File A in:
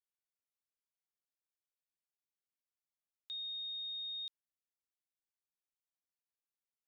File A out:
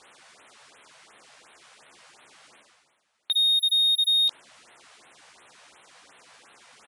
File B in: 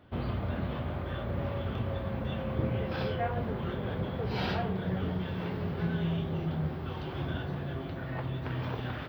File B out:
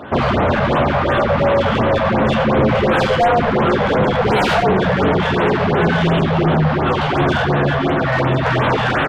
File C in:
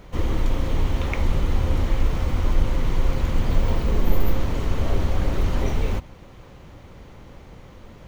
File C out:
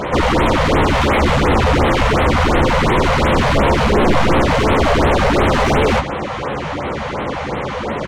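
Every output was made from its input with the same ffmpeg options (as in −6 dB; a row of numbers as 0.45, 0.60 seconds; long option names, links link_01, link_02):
-filter_complex "[0:a]asplit=2[link_01][link_02];[link_02]adelay=14,volume=-7dB[link_03];[link_01][link_03]amix=inputs=2:normalize=0,aresample=22050,aresample=44100,asplit=2[link_04][link_05];[link_05]highpass=frequency=720:poles=1,volume=39dB,asoftclip=type=tanh:threshold=-4dB[link_06];[link_04][link_06]amix=inputs=2:normalize=0,lowpass=frequency=1400:poles=1,volume=-6dB,areverse,acompressor=mode=upward:threshold=-35dB:ratio=2.5,areverse,afftfilt=real='re*(1-between(b*sr/1024,280*pow(6100/280,0.5+0.5*sin(2*PI*2.8*pts/sr))/1.41,280*pow(6100/280,0.5+0.5*sin(2*PI*2.8*pts/sr))*1.41))':imag='im*(1-between(b*sr/1024,280*pow(6100/280,0.5+0.5*sin(2*PI*2.8*pts/sr))/1.41,280*pow(6100/280,0.5+0.5*sin(2*PI*2.8*pts/sr))*1.41))':win_size=1024:overlap=0.75"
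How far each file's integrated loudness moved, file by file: +20.5, +18.5, +10.0 LU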